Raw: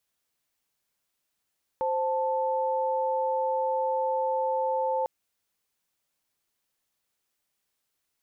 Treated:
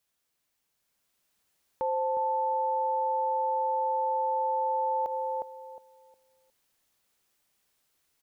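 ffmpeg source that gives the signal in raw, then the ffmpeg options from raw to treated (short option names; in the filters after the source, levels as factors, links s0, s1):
-f lavfi -i "aevalsrc='0.0447*(sin(2*PI*523.25*t)+sin(2*PI*880*t))':d=3.25:s=44100"
-filter_complex "[0:a]asplit=2[s0][s1];[s1]adelay=360,lowpass=f=800:p=1,volume=0.422,asplit=2[s2][s3];[s3]adelay=360,lowpass=f=800:p=1,volume=0.3,asplit=2[s4][s5];[s5]adelay=360,lowpass=f=800:p=1,volume=0.3,asplit=2[s6][s7];[s7]adelay=360,lowpass=f=800:p=1,volume=0.3[s8];[s2][s4][s6][s8]amix=inputs=4:normalize=0[s9];[s0][s9]amix=inputs=2:normalize=0,dynaudnorm=f=680:g=3:m=1.88,alimiter=limit=0.075:level=0:latency=1:release=73"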